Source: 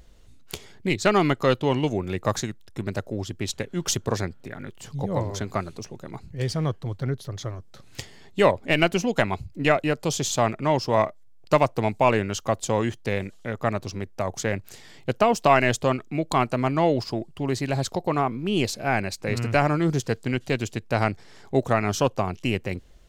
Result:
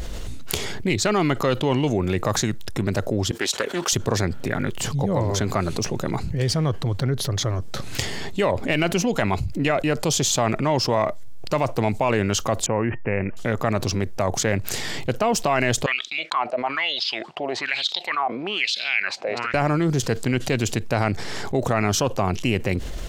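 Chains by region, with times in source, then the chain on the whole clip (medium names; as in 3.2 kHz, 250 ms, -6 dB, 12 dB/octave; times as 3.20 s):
3.31–3.93 s: high-pass 470 Hz + loudspeaker Doppler distortion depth 0.22 ms
12.66–13.37 s: steep low-pass 2.7 kHz 96 dB/octave + feedback comb 920 Hz, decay 0.18 s, mix 50%
15.86–19.54 s: frequency weighting D + wah-wah 1.1 Hz 630–3800 Hz, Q 5.8
whole clip: loudness maximiser +10 dB; level flattener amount 70%; trim -11 dB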